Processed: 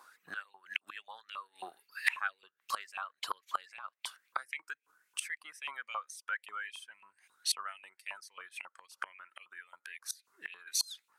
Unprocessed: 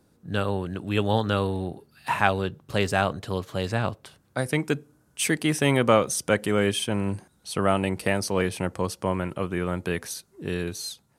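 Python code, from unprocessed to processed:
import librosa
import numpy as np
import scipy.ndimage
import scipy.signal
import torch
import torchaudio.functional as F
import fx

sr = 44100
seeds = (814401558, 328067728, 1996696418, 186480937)

y = fx.dereverb_blind(x, sr, rt60_s=1.5)
y = fx.dmg_buzz(y, sr, base_hz=50.0, harmonics=10, level_db=-60.0, tilt_db=-9, odd_only=False)
y = fx.gate_flip(y, sr, shuts_db=-23.0, range_db=-27)
y = fx.filter_lfo_highpass(y, sr, shape='saw_up', hz=3.7, low_hz=990.0, high_hz=2700.0, q=6.6)
y = F.gain(torch.from_numpy(y), 5.5).numpy()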